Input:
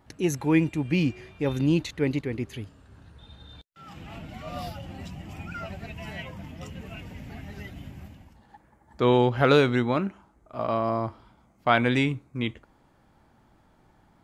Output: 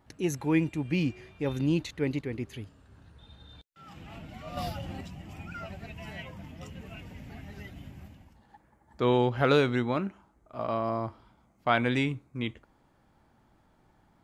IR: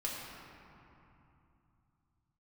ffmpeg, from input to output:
-filter_complex "[0:a]asettb=1/sr,asplit=3[s0][s1][s2];[s0]atrim=end=4.574[s3];[s1]atrim=start=4.57:end=5.01,asetpts=PTS-STARTPTS,afade=t=in:d=0.004:c=qsin,afade=t=out:st=0.436:d=0.004:c=qsin,acontrast=34[s4];[s2]atrim=start=5.006[s5];[s3][s4]acrossfade=d=0.004:c1=hsin:c2=qsin[s6];[s6][s5]acrossfade=d=0.004:c1=qsin:c2=hsin,volume=0.631"

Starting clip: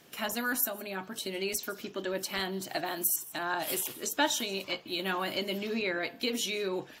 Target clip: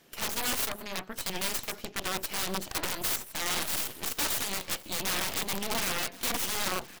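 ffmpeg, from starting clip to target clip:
-af "aeval=exprs='0.211*(cos(1*acos(clip(val(0)/0.211,-1,1)))-cos(1*PI/2))+0.00422*(cos(3*acos(clip(val(0)/0.211,-1,1)))-cos(3*PI/2))+0.00596*(cos(4*acos(clip(val(0)/0.211,-1,1)))-cos(4*PI/2))+0.0596*(cos(7*acos(clip(val(0)/0.211,-1,1)))-cos(7*PI/2))+0.0944*(cos(8*acos(clip(val(0)/0.211,-1,1)))-cos(8*PI/2))':c=same,aeval=exprs='(mod(9.44*val(0)+1,2)-1)/9.44':c=same,aecho=1:1:1066:0.1,volume=0.708"

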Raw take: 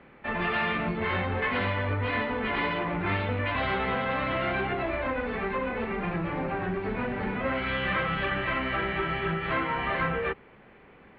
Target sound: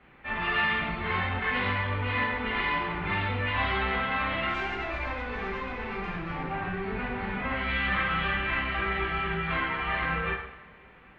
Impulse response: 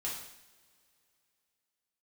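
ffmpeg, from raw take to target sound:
-filter_complex "[0:a]equalizer=f=370:w=0.57:g=-7,asettb=1/sr,asplit=3[s0][s1][s2];[s0]atrim=end=4.494[s3];[s1]atrim=start=4.49:end=6.51,asetpts=PTS-STARTPTS,afade=t=in:d=0.004:c=qsin,afade=t=out:st=2.016:d=0.004:c=qsin,aeval=exprs='(tanh(17.8*val(0)+0.35)-tanh(0.35))/17.8':c=same[s4];[s2]atrim=start=6.506[s5];[s3][s4]acrossfade=d=0.004:c1=hsin:c2=qsin[s6];[s6][s5]acrossfade=d=0.004:c1=qsin:c2=hsin[s7];[1:a]atrim=start_sample=2205[s8];[s7][s8]afir=irnorm=-1:irlink=0"

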